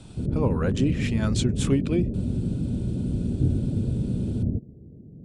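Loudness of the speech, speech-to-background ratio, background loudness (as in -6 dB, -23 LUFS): -27.0 LUFS, 0.5 dB, -27.5 LUFS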